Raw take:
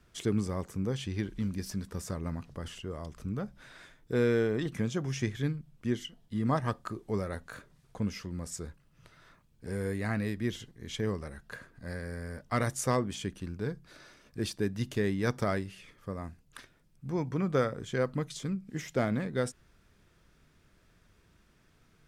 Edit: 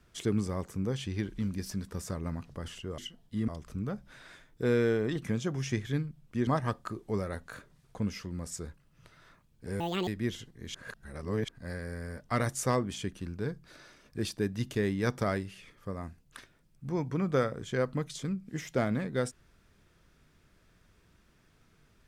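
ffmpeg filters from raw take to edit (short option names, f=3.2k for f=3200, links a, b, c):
-filter_complex "[0:a]asplit=8[a][b][c][d][e][f][g][h];[a]atrim=end=2.982[i];[b]atrim=start=5.968:end=6.472[j];[c]atrim=start=2.978:end=5.972[k];[d]atrim=start=6.468:end=9.804[l];[e]atrim=start=9.8:end=10.28,asetpts=PTS-STARTPTS,asetrate=77175,aresample=44100[m];[f]atrim=start=10.276:end=10.952[n];[g]atrim=start=10.948:end=11.692,asetpts=PTS-STARTPTS,areverse[o];[h]atrim=start=11.688[p];[i][j]acrossfade=d=0.004:c1=hsin:c2=hsin[q];[q][k]acrossfade=d=0.004:c1=hsin:c2=hsin[r];[r][l]acrossfade=d=0.004:c1=hsin:c2=hsin[s];[s][m]acrossfade=d=0.004:c1=hsin:c2=hsin[t];[t][n]acrossfade=d=0.004:c1=hsin:c2=hsin[u];[u][o]acrossfade=d=0.004:c1=hsin:c2=hsin[v];[v][p]acrossfade=d=0.004:c1=hsin:c2=hsin"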